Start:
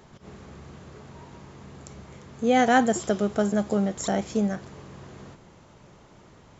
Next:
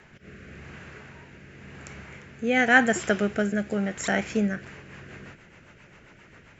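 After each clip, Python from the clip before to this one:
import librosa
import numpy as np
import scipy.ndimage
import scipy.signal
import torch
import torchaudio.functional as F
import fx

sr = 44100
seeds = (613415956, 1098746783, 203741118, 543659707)

y = fx.band_shelf(x, sr, hz=2000.0, db=12.5, octaves=1.2)
y = fx.rotary_switch(y, sr, hz=0.9, then_hz=7.5, switch_at_s=4.34)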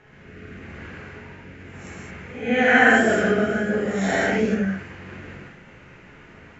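y = fx.spec_swells(x, sr, rise_s=0.51)
y = fx.lowpass(y, sr, hz=2700.0, slope=6)
y = fx.rev_gated(y, sr, seeds[0], gate_ms=250, shape='flat', drr_db=-8.0)
y = y * librosa.db_to_amplitude(-4.0)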